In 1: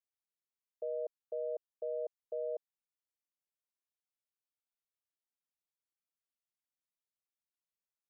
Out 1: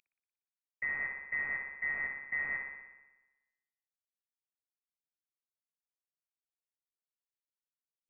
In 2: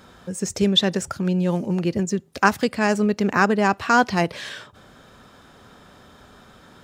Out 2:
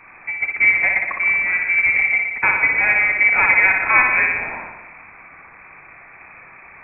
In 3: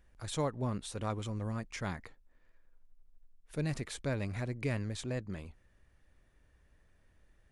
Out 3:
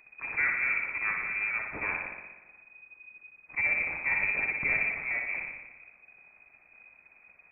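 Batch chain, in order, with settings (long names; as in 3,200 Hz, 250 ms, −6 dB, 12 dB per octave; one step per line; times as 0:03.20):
variable-slope delta modulation 16 kbit/s
spring reverb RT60 1.1 s, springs 59 ms, chirp 75 ms, DRR 1.5 dB
voice inversion scrambler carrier 2,500 Hz
level +4 dB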